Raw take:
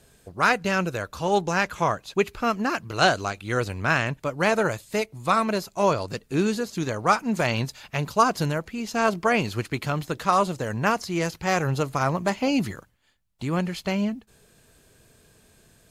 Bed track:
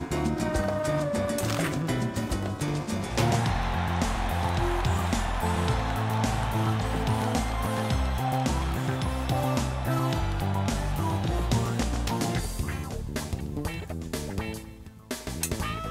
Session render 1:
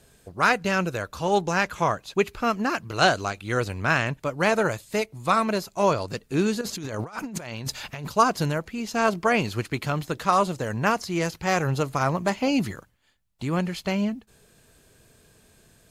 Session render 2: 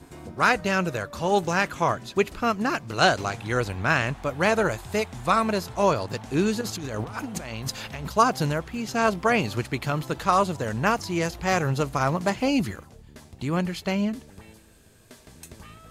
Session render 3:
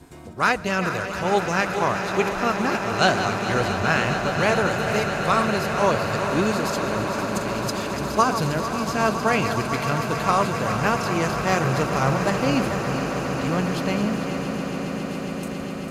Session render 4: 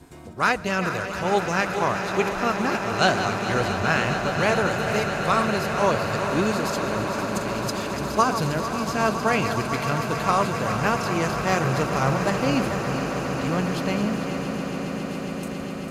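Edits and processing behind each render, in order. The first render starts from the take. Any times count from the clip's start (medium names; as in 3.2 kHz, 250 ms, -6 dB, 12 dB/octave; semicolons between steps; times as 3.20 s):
6.61–8.08 s: compressor with a negative ratio -34 dBFS
add bed track -15 dB
backward echo that repeats 224 ms, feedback 75%, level -10 dB; on a send: echo with a slow build-up 137 ms, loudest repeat 8, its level -14 dB
trim -1 dB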